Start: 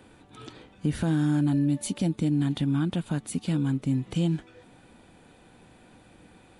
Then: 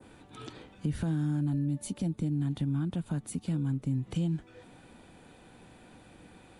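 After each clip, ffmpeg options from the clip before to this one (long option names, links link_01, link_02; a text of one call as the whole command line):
ffmpeg -i in.wav -filter_complex "[0:a]adynamicequalizer=threshold=0.00251:dfrequency=3200:dqfactor=0.7:tfrequency=3200:tqfactor=0.7:attack=5:release=100:ratio=0.375:range=2.5:mode=cutabove:tftype=bell,acrossover=split=150[link_01][link_02];[link_02]acompressor=threshold=-38dB:ratio=2.5[link_03];[link_01][link_03]amix=inputs=2:normalize=0" out.wav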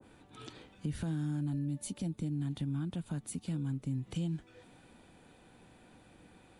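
ffmpeg -i in.wav -af "adynamicequalizer=threshold=0.002:dfrequency=2000:dqfactor=0.7:tfrequency=2000:tqfactor=0.7:attack=5:release=100:ratio=0.375:range=2:mode=boostabove:tftype=highshelf,volume=-5dB" out.wav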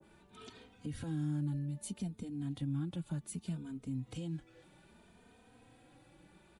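ffmpeg -i in.wav -filter_complex "[0:a]asplit=2[link_01][link_02];[link_02]adelay=3,afreqshift=0.63[link_03];[link_01][link_03]amix=inputs=2:normalize=1" out.wav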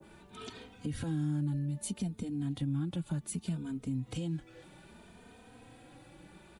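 ffmpeg -i in.wav -af "acompressor=threshold=-43dB:ratio=1.5,volume=7dB" out.wav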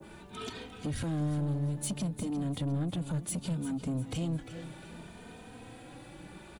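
ffmpeg -i in.wav -af "asoftclip=type=tanh:threshold=-34.5dB,aecho=1:1:351|702|1053|1404:0.237|0.0996|0.0418|0.0176,volume=6dB" out.wav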